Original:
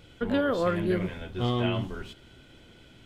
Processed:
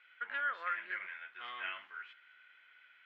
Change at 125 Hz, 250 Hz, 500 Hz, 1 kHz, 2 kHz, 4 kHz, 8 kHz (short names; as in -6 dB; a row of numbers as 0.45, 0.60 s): under -40 dB, under -35 dB, -28.5 dB, -6.0 dB, +0.5 dB, -12.0 dB, n/a